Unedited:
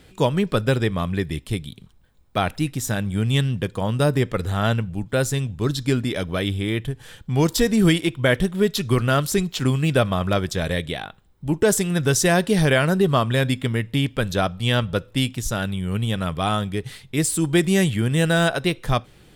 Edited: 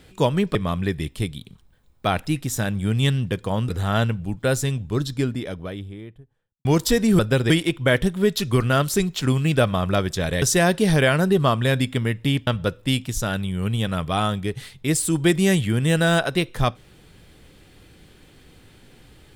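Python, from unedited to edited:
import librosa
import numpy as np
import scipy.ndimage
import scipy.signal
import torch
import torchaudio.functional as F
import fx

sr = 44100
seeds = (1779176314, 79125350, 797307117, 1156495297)

y = fx.studio_fade_out(x, sr, start_s=5.25, length_s=2.09)
y = fx.edit(y, sr, fx.move(start_s=0.55, length_s=0.31, to_s=7.88),
    fx.cut(start_s=4.0, length_s=0.38),
    fx.cut(start_s=10.8, length_s=1.31),
    fx.cut(start_s=14.16, length_s=0.6), tone=tone)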